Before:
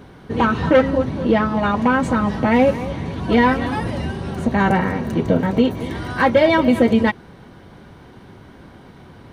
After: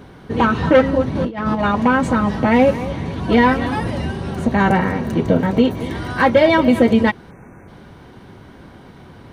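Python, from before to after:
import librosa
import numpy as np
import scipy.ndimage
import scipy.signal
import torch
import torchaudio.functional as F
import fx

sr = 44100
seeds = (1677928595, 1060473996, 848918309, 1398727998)

y = fx.over_compress(x, sr, threshold_db=-21.0, ratio=-0.5, at=(1.15, 1.64))
y = fx.spec_erase(y, sr, start_s=7.31, length_s=0.37, low_hz=2700.0, high_hz=5800.0)
y = y * 10.0 ** (1.5 / 20.0)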